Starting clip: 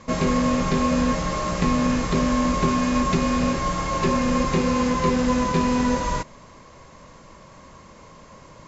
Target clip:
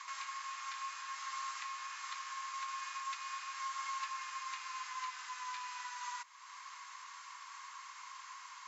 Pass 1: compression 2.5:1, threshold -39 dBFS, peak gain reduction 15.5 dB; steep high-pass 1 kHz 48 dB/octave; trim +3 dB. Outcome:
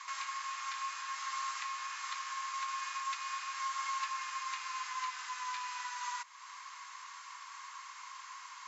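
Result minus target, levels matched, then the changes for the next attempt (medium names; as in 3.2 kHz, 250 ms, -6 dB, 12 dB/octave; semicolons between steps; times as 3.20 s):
compression: peak gain reduction -3.5 dB
change: compression 2.5:1, threshold -45 dBFS, peak gain reduction 19 dB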